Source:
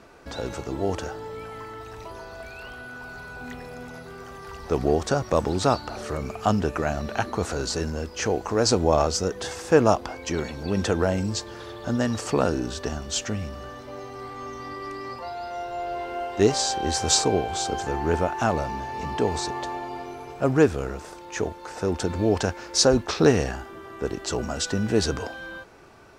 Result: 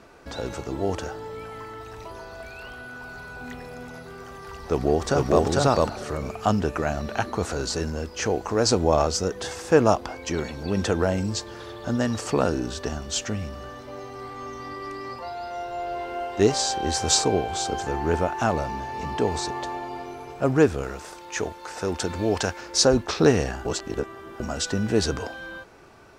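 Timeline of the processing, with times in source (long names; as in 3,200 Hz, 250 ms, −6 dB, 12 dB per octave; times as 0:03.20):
0:04.55–0:05.44: delay throw 450 ms, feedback 10%, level 0 dB
0:20.83–0:22.61: tilt shelving filter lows −3.5 dB, about 750 Hz
0:23.65–0:24.40: reverse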